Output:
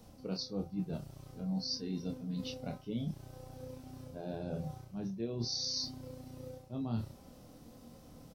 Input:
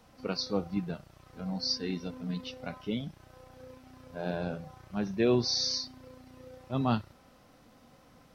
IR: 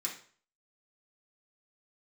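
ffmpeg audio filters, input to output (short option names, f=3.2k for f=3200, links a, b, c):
-filter_complex "[0:a]equalizer=f=1.7k:t=o:w=2.4:g=-14,areverse,acompressor=threshold=-41dB:ratio=10,areverse,asplit=2[a][b];[b]adelay=26,volume=-5dB[c];[a][c]amix=inputs=2:normalize=0,volume=6dB"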